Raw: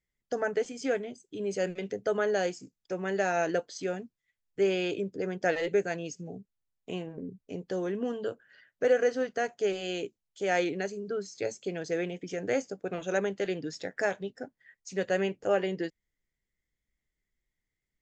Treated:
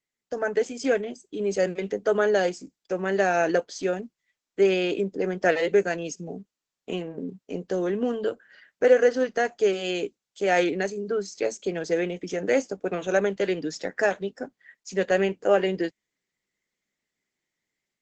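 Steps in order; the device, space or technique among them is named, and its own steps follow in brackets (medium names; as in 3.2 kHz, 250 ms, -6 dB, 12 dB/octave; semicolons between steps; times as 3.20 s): 2.34–3.24 s: dynamic bell 6.6 kHz, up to -3 dB, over -55 dBFS, Q 4.2; video call (high-pass 170 Hz 24 dB/octave; level rider gain up to 6.5 dB; Opus 12 kbps 48 kHz)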